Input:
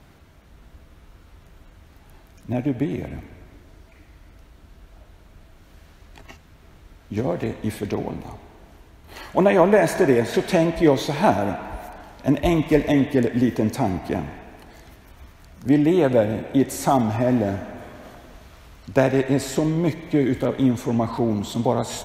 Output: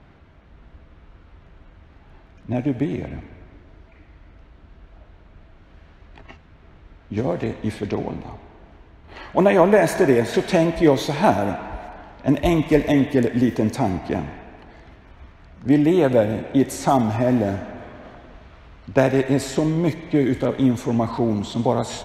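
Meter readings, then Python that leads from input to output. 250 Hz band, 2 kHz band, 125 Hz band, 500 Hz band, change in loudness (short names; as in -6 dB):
+1.0 dB, +1.0 dB, +1.0 dB, +1.0 dB, +1.0 dB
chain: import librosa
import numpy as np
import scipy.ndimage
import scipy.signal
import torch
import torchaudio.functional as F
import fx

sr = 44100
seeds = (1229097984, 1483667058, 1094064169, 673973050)

y = fx.env_lowpass(x, sr, base_hz=2800.0, full_db=-15.5)
y = y * librosa.db_to_amplitude(1.0)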